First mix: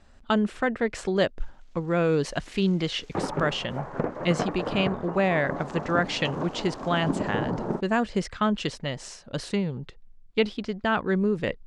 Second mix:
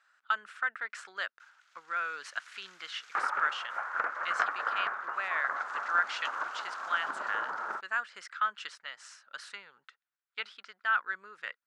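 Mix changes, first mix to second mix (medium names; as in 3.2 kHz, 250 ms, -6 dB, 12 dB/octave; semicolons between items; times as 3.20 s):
speech -10.5 dB; master: add resonant high-pass 1.4 kHz, resonance Q 4.7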